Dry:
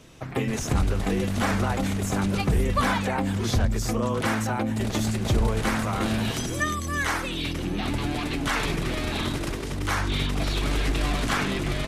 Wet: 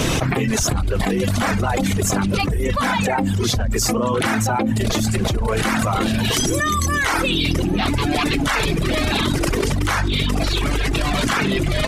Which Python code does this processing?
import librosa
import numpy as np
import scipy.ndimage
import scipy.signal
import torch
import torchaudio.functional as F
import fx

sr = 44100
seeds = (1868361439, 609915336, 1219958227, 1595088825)

y = fx.dereverb_blind(x, sr, rt60_s=1.5)
y = fx.env_flatten(y, sr, amount_pct=100)